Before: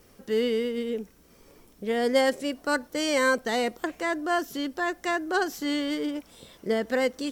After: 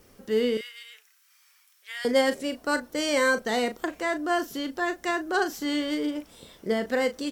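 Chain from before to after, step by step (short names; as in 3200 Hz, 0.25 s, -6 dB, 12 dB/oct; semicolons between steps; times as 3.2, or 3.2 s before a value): 0.57–2.05 HPF 1400 Hz 24 dB/oct; doubler 37 ms -10.5 dB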